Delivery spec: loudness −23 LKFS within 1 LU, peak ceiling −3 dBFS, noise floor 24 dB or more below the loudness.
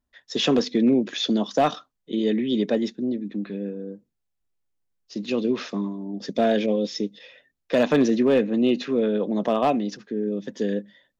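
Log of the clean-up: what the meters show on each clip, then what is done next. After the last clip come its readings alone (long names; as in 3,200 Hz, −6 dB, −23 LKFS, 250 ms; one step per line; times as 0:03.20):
share of clipped samples 0.3%; peaks flattened at −12.0 dBFS; integrated loudness −24.0 LKFS; sample peak −12.0 dBFS; target loudness −23.0 LKFS
→ clipped peaks rebuilt −12 dBFS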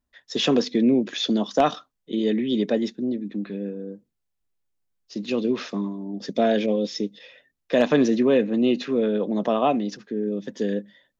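share of clipped samples 0.0%; integrated loudness −24.0 LKFS; sample peak −3.0 dBFS; target loudness −23.0 LKFS
→ level +1 dB
brickwall limiter −3 dBFS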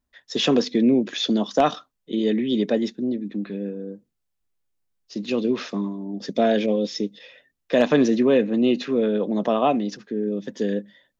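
integrated loudness −23.0 LKFS; sample peak −3.0 dBFS; background noise floor −78 dBFS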